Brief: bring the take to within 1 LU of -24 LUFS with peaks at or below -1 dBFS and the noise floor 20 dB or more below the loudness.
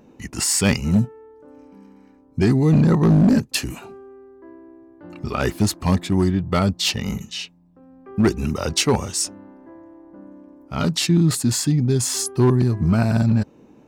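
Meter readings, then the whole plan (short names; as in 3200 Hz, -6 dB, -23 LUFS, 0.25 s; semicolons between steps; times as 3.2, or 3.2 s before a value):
clipped 1.5%; flat tops at -10.0 dBFS; loudness -19.5 LUFS; peak -10.0 dBFS; loudness target -24.0 LUFS
-> clip repair -10 dBFS; gain -4.5 dB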